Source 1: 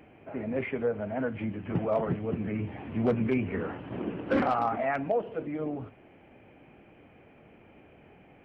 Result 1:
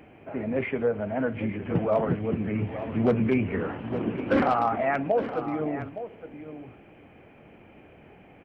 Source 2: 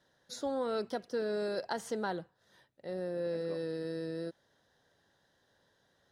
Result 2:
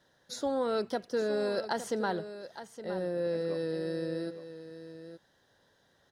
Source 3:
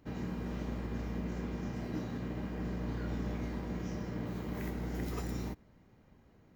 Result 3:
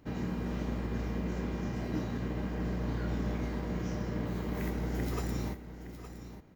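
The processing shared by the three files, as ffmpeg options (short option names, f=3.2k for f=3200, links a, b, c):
-af "aecho=1:1:865:0.251,volume=3.5dB"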